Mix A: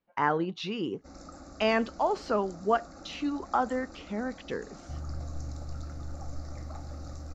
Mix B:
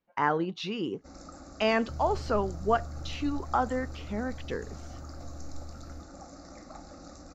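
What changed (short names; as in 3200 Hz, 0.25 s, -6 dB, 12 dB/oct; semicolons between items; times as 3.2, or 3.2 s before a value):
second sound: entry -3.00 s; master: add high shelf 12000 Hz +8.5 dB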